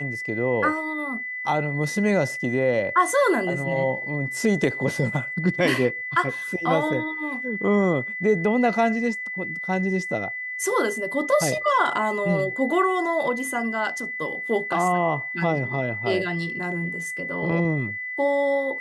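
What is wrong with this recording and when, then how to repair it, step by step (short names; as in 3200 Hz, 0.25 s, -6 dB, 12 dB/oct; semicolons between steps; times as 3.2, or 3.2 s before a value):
tone 2000 Hz -29 dBFS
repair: notch 2000 Hz, Q 30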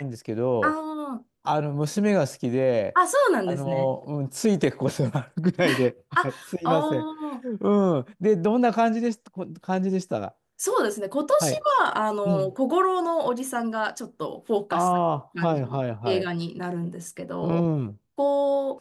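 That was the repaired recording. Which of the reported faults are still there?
none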